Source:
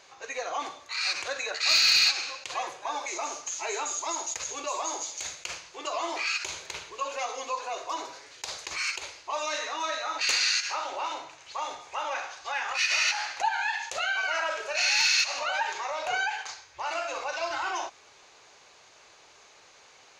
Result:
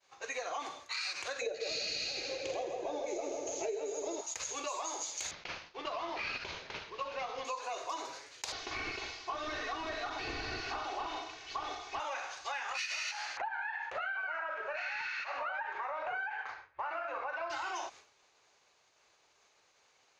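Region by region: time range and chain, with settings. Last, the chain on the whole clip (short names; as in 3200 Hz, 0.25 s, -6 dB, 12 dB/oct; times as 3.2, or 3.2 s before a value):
1.41–4.21 Chebyshev low-pass 6900 Hz, order 4 + resonant low shelf 740 Hz +13.5 dB, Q 3 + split-band echo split 2500 Hz, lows 0.15 s, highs 81 ms, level -5 dB
5.31–7.45 CVSD 32 kbps + air absorption 140 m
8.52–12 delta modulation 32 kbps, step -43.5 dBFS + comb 2.7 ms, depth 85%
13.37–17.5 compressor 1.5:1, threshold -31 dBFS + synth low-pass 1600 Hz, resonance Q 1.7
whole clip: expander -46 dBFS; compressor 10:1, threshold -33 dBFS; gain -1.5 dB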